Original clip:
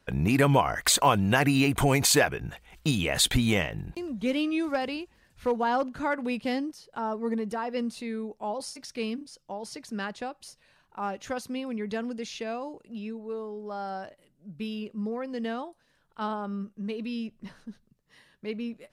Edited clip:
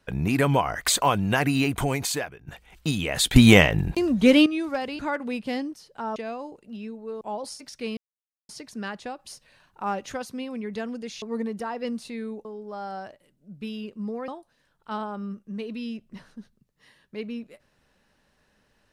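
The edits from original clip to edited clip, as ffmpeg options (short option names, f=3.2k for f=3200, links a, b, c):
-filter_complex "[0:a]asplit=14[a][b][c][d][e][f][g][h][i][j][k][l][m][n];[a]atrim=end=2.47,asetpts=PTS-STARTPTS,afade=t=out:st=1.63:d=0.84:silence=0.112202[o];[b]atrim=start=2.47:end=3.362,asetpts=PTS-STARTPTS,afade=t=in:d=0.004:c=hsin:silence=0.112202[p];[c]atrim=start=3.358:end=4.462,asetpts=PTS-STARTPTS,volume=11.5dB[q];[d]atrim=start=4.458:end=4.992[r];[e]atrim=start=5.968:end=7.142[s];[f]atrim=start=12.378:end=13.432[t];[g]atrim=start=8.368:end=9.13,asetpts=PTS-STARTPTS,afade=t=out:st=0.758:d=0.004:c=hsin[u];[h]atrim=start=9.13:end=9.65,asetpts=PTS-STARTPTS,volume=0[v];[i]atrim=start=9.65:end=10.352,asetpts=PTS-STARTPTS,afade=t=in:d=0.004:c=hsin[w];[j]atrim=start=10.348:end=11.282,asetpts=PTS-STARTPTS,volume=4dB[x];[k]atrim=start=11.278:end=12.382[y];[l]atrim=start=7.138:end=8.372[z];[m]atrim=start=13.428:end=15.262[aa];[n]atrim=start=15.578[ab];[o][p]concat=n=2:v=0:a=1[ac];[ac][q]acrossfade=d=0.004:c1=hsin:c2=hsin[ad];[ad][r]acrossfade=d=0.004:c1=hsin:c2=hsin[ae];[ae][s]acrossfade=d=0.004:c1=hsin:c2=hsin[af];[af][t]acrossfade=d=0.004:c1=hsin:c2=hsin[ag];[u][v][w]concat=n=3:v=0:a=1[ah];[ag][ah]acrossfade=d=0.004:c1=hsin:c2=hsin[ai];[ai][x]acrossfade=d=0.004:c1=hsin:c2=hsin[aj];[aj][y]acrossfade=d=0.004:c1=hsin:c2=hsin[ak];[ak][z]acrossfade=d=0.004:c1=hsin:c2=hsin[al];[al][aa]acrossfade=d=0.004:c1=hsin:c2=hsin[am];[am][ab]acrossfade=d=0.004:c1=hsin:c2=hsin"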